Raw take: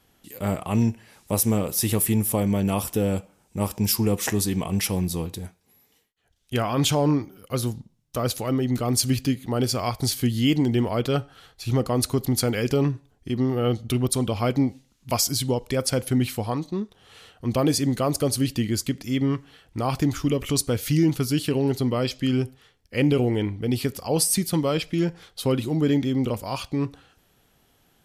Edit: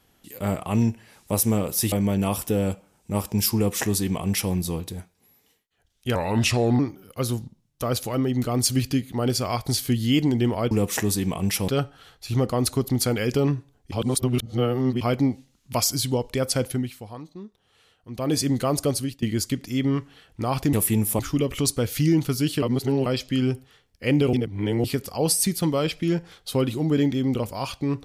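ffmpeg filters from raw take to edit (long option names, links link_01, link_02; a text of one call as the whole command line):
ffmpeg -i in.wav -filter_complex "[0:a]asplit=17[link_01][link_02][link_03][link_04][link_05][link_06][link_07][link_08][link_09][link_10][link_11][link_12][link_13][link_14][link_15][link_16][link_17];[link_01]atrim=end=1.922[link_18];[link_02]atrim=start=2.378:end=6.614[link_19];[link_03]atrim=start=6.61:end=7.13,asetpts=PTS-STARTPTS,asetrate=35721,aresample=44100,atrim=end_sample=28311,asetpts=PTS-STARTPTS[link_20];[link_04]atrim=start=7.126:end=11.052[link_21];[link_05]atrim=start=4.008:end=4.982[link_22];[link_06]atrim=start=11.048:end=13.292[link_23];[link_07]atrim=start=13.288:end=14.382,asetpts=PTS-STARTPTS,areverse[link_24];[link_08]atrim=start=14.378:end=16.27,asetpts=PTS-STARTPTS,afade=type=out:start_time=1.642:duration=0.25:silence=0.266073[link_25];[link_09]atrim=start=16.27:end=17.51,asetpts=PTS-STARTPTS,volume=-11.5dB[link_26];[link_10]atrim=start=17.51:end=18.59,asetpts=PTS-STARTPTS,afade=type=in:duration=0.25:silence=0.266073,afade=type=out:start_time=0.75:duration=0.33:silence=0.0891251[link_27];[link_11]atrim=start=18.59:end=20.102,asetpts=PTS-STARTPTS,afade=type=in:duration=0.004:curve=hsin:silence=0.0891251[link_28];[link_12]atrim=start=1.918:end=2.382[link_29];[link_13]atrim=start=20.098:end=21.532[link_30];[link_14]atrim=start=21.528:end=21.972,asetpts=PTS-STARTPTS,areverse[link_31];[link_15]atrim=start=21.968:end=23.242[link_32];[link_16]atrim=start=23.238:end=23.752,asetpts=PTS-STARTPTS,areverse[link_33];[link_17]atrim=start=23.748[link_34];[link_18][link_19]acrossfade=duration=0.004:curve1=hsin:curve2=hsin[link_35];[link_35][link_20]acrossfade=duration=0.004:curve1=hsin:curve2=hsin[link_36];[link_36][link_21]acrossfade=duration=0.004:curve1=hsin:curve2=hsin[link_37];[link_37][link_22]acrossfade=duration=0.004:curve1=hsin:curve2=hsin[link_38];[link_38][link_23]acrossfade=duration=0.004:curve1=hsin:curve2=hsin[link_39];[link_39][link_24]acrossfade=duration=0.004:curve1=hsin:curve2=hsin[link_40];[link_25][link_26][link_27][link_28]concat=n=4:v=0:a=1[link_41];[link_40][link_41]acrossfade=duration=0.004:curve1=hsin:curve2=hsin[link_42];[link_42][link_29]acrossfade=duration=0.004:curve1=hsin:curve2=hsin[link_43];[link_43][link_30]acrossfade=duration=0.004:curve1=hsin:curve2=hsin[link_44];[link_44][link_31]acrossfade=duration=0.004:curve1=hsin:curve2=hsin[link_45];[link_45][link_32]acrossfade=duration=0.004:curve1=hsin:curve2=hsin[link_46];[link_46][link_33]acrossfade=duration=0.004:curve1=hsin:curve2=hsin[link_47];[link_47][link_34]acrossfade=duration=0.004:curve1=hsin:curve2=hsin" out.wav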